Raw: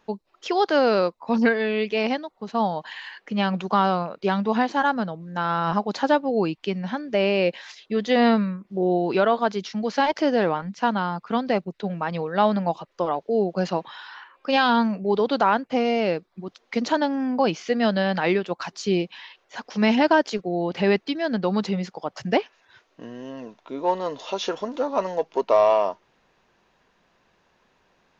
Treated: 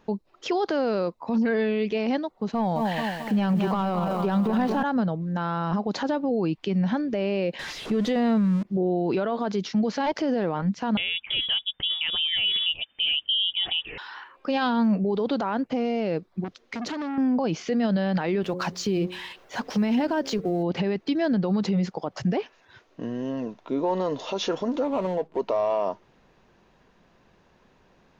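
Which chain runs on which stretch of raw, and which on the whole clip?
0:02.52–0:04.83: high-frequency loss of the air 51 metres + leveller curve on the samples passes 1 + feedback echo at a low word length 218 ms, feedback 55%, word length 7 bits, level −8.5 dB
0:07.59–0:08.63: converter with a step at zero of −33 dBFS + high-frequency loss of the air 50 metres
0:10.97–0:13.98: parametric band 620 Hz +9.5 dB 0.76 octaves + voice inversion scrambler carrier 3,600 Hz
0:16.44–0:17.18: parametric band 830 Hz −6 dB 0.79 octaves + downward compressor 5 to 1, threshold −28 dBFS + saturating transformer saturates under 1,700 Hz
0:18.42–0:20.63: mu-law and A-law mismatch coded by mu + hum removal 90.3 Hz, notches 6
0:24.84–0:25.39: running median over 25 samples + high-frequency loss of the air 65 metres
whole clip: low-shelf EQ 490 Hz +9.5 dB; brickwall limiter −17 dBFS

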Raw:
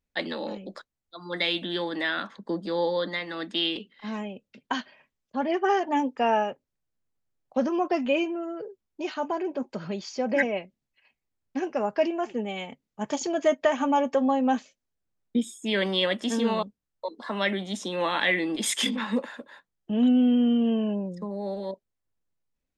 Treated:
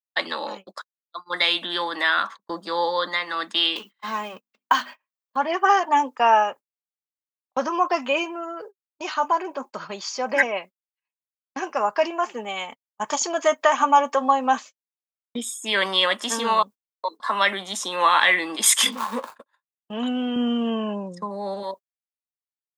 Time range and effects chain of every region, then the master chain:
0:03.76–0:05.36: mu-law and A-law mismatch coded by mu + parametric band 11,000 Hz −9 dB 0.82 octaves + mains-hum notches 50/100/150/200/250/300/350 Hz
0:18.92–0:19.36: running median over 25 samples + double-tracking delay 17 ms −13 dB
0:20.36–0:21.63: low-pass filter 10,000 Hz 24 dB per octave + low-shelf EQ 210 Hz +11.5 dB
whole clip: RIAA equalisation recording; noise gate −41 dBFS, range −34 dB; parametric band 1,100 Hz +14 dB 0.98 octaves

